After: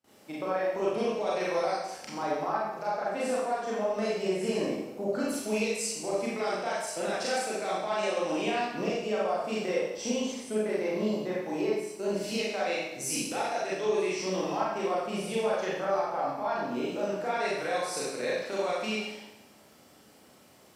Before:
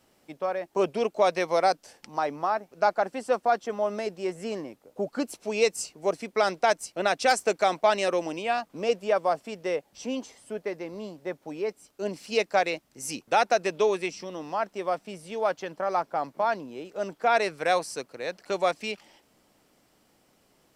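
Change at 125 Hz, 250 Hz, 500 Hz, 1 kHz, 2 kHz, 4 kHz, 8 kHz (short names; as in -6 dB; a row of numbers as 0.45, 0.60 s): +2.5, +2.5, -2.5, -5.5, -4.0, -1.5, +1.5 dB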